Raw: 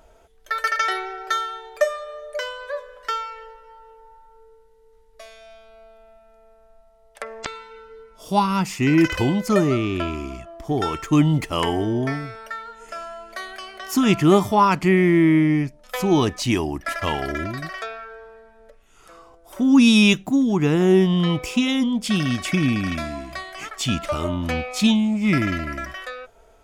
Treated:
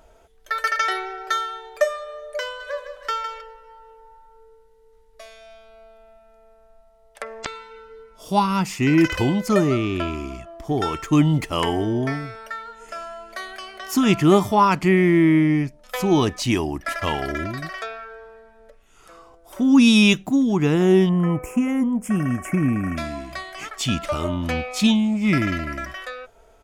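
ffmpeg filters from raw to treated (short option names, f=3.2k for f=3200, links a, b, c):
-filter_complex "[0:a]asplit=3[a][b][c];[a]afade=t=out:st=2.59:d=0.02[d];[b]aecho=1:1:158|316|474|632|790:0.355|0.17|0.0817|0.0392|0.0188,afade=t=in:st=2.59:d=0.02,afade=t=out:st=3.4:d=0.02[e];[c]afade=t=in:st=3.4:d=0.02[f];[d][e][f]amix=inputs=3:normalize=0,asettb=1/sr,asplit=3[g][h][i];[g]atrim=end=21.094[j];[h]atrim=start=21.09:end=22.97,asetpts=PTS-STARTPTS,afade=t=in:d=0.004:c=qsin,afade=t=out:st=1.876:d=0.004:c=qsin,asuperstop=centerf=4000:order=4:qfactor=0.63[k];[i]atrim=start=22.966[l];[j][k]acrossfade=d=0.004:c1=hsin:c2=qsin[m];[m][l]acrossfade=d=0.004:c1=qsin:c2=hsin"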